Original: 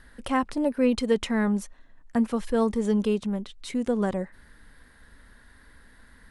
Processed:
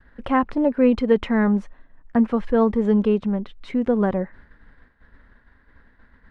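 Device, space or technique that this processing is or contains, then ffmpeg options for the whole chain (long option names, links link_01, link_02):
hearing-loss simulation: -af "lowpass=2100,agate=range=-33dB:threshold=-46dB:ratio=3:detection=peak,volume=5.5dB"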